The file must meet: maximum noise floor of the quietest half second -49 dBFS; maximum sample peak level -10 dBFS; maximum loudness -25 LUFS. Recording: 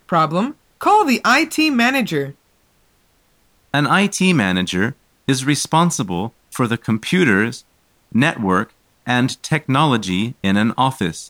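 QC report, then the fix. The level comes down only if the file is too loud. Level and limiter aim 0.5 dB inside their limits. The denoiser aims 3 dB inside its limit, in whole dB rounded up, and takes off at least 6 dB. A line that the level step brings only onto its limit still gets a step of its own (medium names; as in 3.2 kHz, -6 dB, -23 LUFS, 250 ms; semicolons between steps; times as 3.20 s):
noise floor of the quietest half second -59 dBFS: pass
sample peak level -2.0 dBFS: fail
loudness -17.5 LUFS: fail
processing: trim -8 dB; peak limiter -10.5 dBFS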